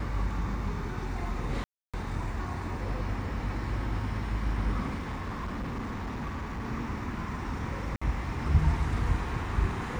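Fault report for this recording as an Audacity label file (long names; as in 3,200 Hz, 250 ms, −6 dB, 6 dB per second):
1.640000	1.940000	drop-out 296 ms
4.940000	6.650000	clipping −31 dBFS
7.960000	8.020000	drop-out 55 ms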